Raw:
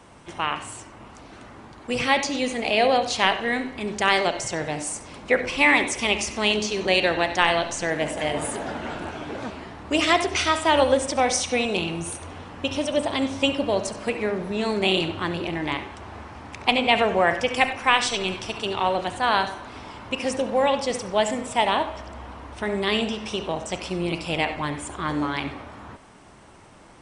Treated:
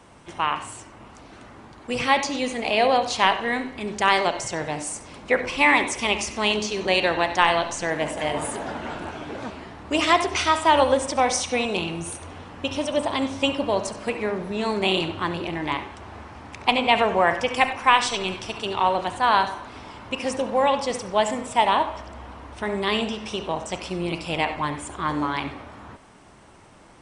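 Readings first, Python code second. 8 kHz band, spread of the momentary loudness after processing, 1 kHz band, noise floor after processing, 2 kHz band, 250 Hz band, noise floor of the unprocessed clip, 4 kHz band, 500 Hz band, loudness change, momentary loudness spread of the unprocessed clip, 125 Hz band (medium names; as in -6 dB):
-1.0 dB, 15 LU, +2.5 dB, -47 dBFS, -0.5 dB, -1.0 dB, -46 dBFS, -1.0 dB, -0.5 dB, +0.5 dB, 14 LU, -1.0 dB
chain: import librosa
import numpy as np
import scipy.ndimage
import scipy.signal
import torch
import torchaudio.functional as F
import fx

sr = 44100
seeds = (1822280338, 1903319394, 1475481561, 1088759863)

y = fx.dynamic_eq(x, sr, hz=1000.0, q=2.5, threshold_db=-38.0, ratio=4.0, max_db=6)
y = y * librosa.db_to_amplitude(-1.0)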